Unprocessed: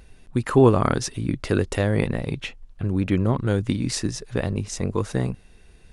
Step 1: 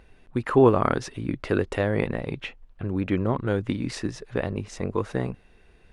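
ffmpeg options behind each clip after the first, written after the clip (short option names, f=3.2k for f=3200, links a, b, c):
-af "bass=f=250:g=-6,treble=f=4k:g=-13"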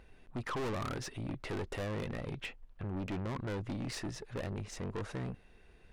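-af "aeval=exprs='(tanh(35.5*val(0)+0.3)-tanh(0.3))/35.5':c=same,volume=-3.5dB"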